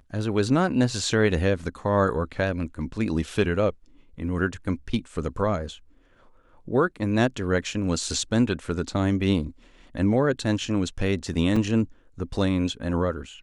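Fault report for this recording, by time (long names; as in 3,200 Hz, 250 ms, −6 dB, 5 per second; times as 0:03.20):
0:11.56: drop-out 4.4 ms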